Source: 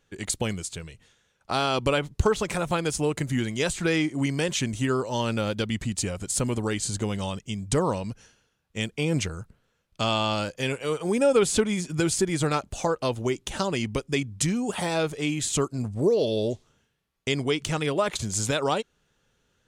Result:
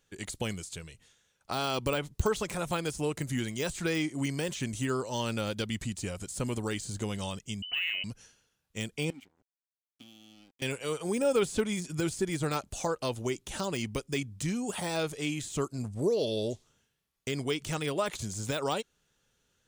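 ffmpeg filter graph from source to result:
ffmpeg -i in.wav -filter_complex "[0:a]asettb=1/sr,asplit=3[link_01][link_02][link_03];[link_01]atrim=end=7.624[link_04];[link_02]atrim=start=7.62:end=8.04,asetpts=PTS-STARTPTS,afade=type=in:duration=0.004:curve=qsin,afade=type=out:start_time=0.416:duration=0.004:curve=qsin,volume=17.5dB,asoftclip=hard,volume=-17.5dB,lowpass=frequency=2600:width_type=q:width=0.5098,lowpass=frequency=2600:width_type=q:width=0.6013,lowpass=frequency=2600:width_type=q:width=0.9,lowpass=frequency=2600:width_type=q:width=2.563,afreqshift=-3100[link_05];[link_03]atrim=start=8.036[link_06];[link_04][link_05]acrossfade=duration=0.004:curve1=hsin:curve2=qsin[link_07];[link_07][link_06]acrossfade=duration=0.004:curve1=qsin:curve2=hsin,asettb=1/sr,asplit=3[link_08][link_09][link_10];[link_08]atrim=end=9.104[link_11];[link_09]atrim=start=9.1:end=10.62,asetpts=PTS-STARTPTS,afade=type=in:duration=0.004:curve=qsin,afade=type=out:start_time=1.516:duration=0.004:curve=qsin,acrossover=split=460|3300[link_12][link_13][link_14];[link_12]acompressor=threshold=-30dB:ratio=4[link_15];[link_13]acompressor=threshold=-39dB:ratio=4[link_16];[link_14]acompressor=threshold=-44dB:ratio=4[link_17];[link_15][link_16][link_17]amix=inputs=3:normalize=0,asplit=3[link_18][link_19][link_20];[link_18]bandpass=frequency=270:width_type=q:width=8,volume=0dB[link_21];[link_19]bandpass=frequency=2290:width_type=q:width=8,volume=-6dB[link_22];[link_20]bandpass=frequency=3010:width_type=q:width=8,volume=-9dB[link_23];[link_21][link_22][link_23]amix=inputs=3:normalize=0,aeval=exprs='sgn(val(0))*max(abs(val(0))-0.00211,0)':channel_layout=same[link_24];[link_10]atrim=start=10.616[link_25];[link_11][link_24]acrossfade=duration=0.004:curve1=hsin:curve2=qsin[link_26];[link_26][link_25]acrossfade=duration=0.004:curve1=qsin:curve2=hsin,deesser=0.8,highshelf=frequency=4100:gain=9,volume=-6dB" out.wav

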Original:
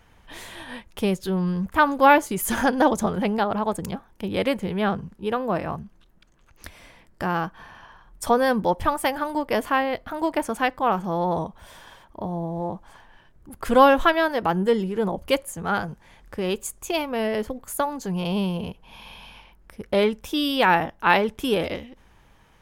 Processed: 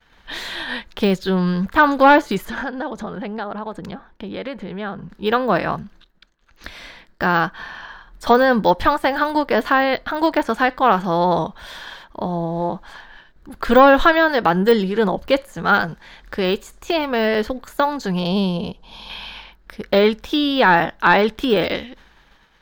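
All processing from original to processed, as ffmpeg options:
ffmpeg -i in.wav -filter_complex "[0:a]asettb=1/sr,asplit=3[link_01][link_02][link_03];[link_01]atrim=end=2.454[link_04];[link_02]atrim=start=2.45:end=5.1,asetpts=PTS-STARTPTS,afade=type=in:duration=0.004:curve=qsin,afade=type=out:start_time=2.646:duration=0.004:curve=qsin,lowpass=frequency=1700:poles=1,acompressor=threshold=-35dB:ratio=3:attack=3.2:release=140:knee=1:detection=peak[link_05];[link_03]atrim=start=5.096[link_06];[link_04][link_05]acrossfade=duration=0.004:curve1=hsin:curve2=qsin[link_07];[link_07][link_06]acrossfade=duration=0.004:curve1=qsin:curve2=hsin,asettb=1/sr,asplit=3[link_08][link_09][link_10];[link_08]atrim=end=18.194[link_11];[link_09]atrim=start=18.19:end=19.1,asetpts=PTS-STARTPTS,afade=type=in:duration=0.004:curve=qsin,afade=type=out:start_time=0.906:duration=0.004:curve=qsin,lowpass=frequency=11000:width=0.5412,lowpass=frequency=11000:width=1.3066,equalizer=frequency=1900:width=1.2:gain=-13.5[link_12];[link_10]atrim=start=19.096[link_13];[link_11][link_12]acrossfade=duration=0.004:curve1=hsin:curve2=qsin[link_14];[link_14][link_13]acrossfade=duration=0.004:curve1=qsin:curve2=hsin,deesser=0.95,agate=range=-33dB:threshold=-49dB:ratio=3:detection=peak,equalizer=frequency=100:width_type=o:width=0.67:gain=-11,equalizer=frequency=1600:width_type=o:width=0.67:gain=7,equalizer=frequency=4000:width_type=o:width=0.67:gain=11,equalizer=frequency=10000:width_type=o:width=0.67:gain=-8,volume=6.5dB" out.wav

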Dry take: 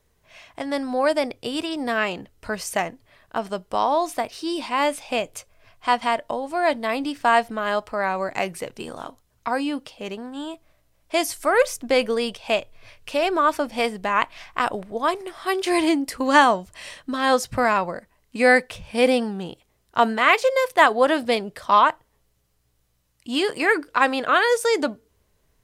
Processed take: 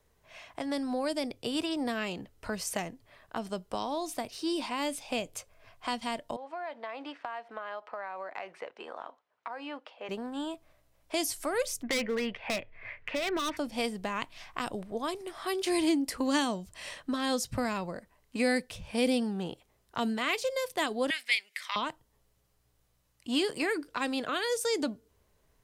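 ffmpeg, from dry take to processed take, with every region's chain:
ffmpeg -i in.wav -filter_complex "[0:a]asettb=1/sr,asplit=3[link_01][link_02][link_03];[link_01]atrim=end=6.364[link_04];[link_02]atrim=start=6.36:end=10.09,asetpts=PTS-STARTPTS,afade=type=in:duration=0.004:curve=qsin,afade=type=out:start_time=3.726:duration=0.004:curve=qsin,acrusher=bits=8:mode=log:mix=0:aa=0.000001,highpass=610,lowpass=2300,acompressor=threshold=-31dB:ratio=2.5:attack=3.2:release=140:knee=1:detection=peak[link_05];[link_03]atrim=start=10.086[link_06];[link_04][link_05]acrossfade=duration=0.004:curve1=hsin:curve2=qsin[link_07];[link_07][link_06]acrossfade=duration=0.004:curve1=qsin:curve2=hsin,asettb=1/sr,asplit=3[link_08][link_09][link_10];[link_08]atrim=end=11.834[link_11];[link_09]atrim=start=11.83:end=13.57,asetpts=PTS-STARTPTS,afade=type=in:duration=0.004:curve=qsin,afade=type=out:start_time=1.736:duration=0.004:curve=qsin,lowpass=frequency=2000:width_type=q:width=7.1,volume=17.5dB,asoftclip=hard,volume=-17.5dB[link_12];[link_10]atrim=start=13.566[link_13];[link_11][link_12]acrossfade=duration=0.004:curve1=hsin:curve2=qsin[link_14];[link_14][link_13]acrossfade=duration=0.004:curve1=qsin:curve2=hsin,asettb=1/sr,asplit=3[link_15][link_16][link_17];[link_15]atrim=end=21.104[link_18];[link_16]atrim=start=21.1:end=21.76,asetpts=PTS-STARTPTS,afade=type=in:duration=0.004:curve=qsin,afade=type=out:start_time=0.656:duration=0.004:curve=qsin,acompressor=mode=upward:threshold=-31dB:ratio=2.5:attack=3.2:release=140:knee=2.83:detection=peak,highpass=frequency=2100:width_type=q:width=7.1[link_19];[link_17]atrim=start=21.756[link_20];[link_18][link_19]acrossfade=duration=0.004:curve1=hsin:curve2=qsin[link_21];[link_21][link_20]acrossfade=duration=0.004:curve1=qsin:curve2=hsin,equalizer=frequency=790:width=0.65:gain=3,acrossover=split=340|3000[link_22][link_23][link_24];[link_23]acompressor=threshold=-33dB:ratio=4[link_25];[link_22][link_25][link_24]amix=inputs=3:normalize=0,volume=-4dB" out.wav

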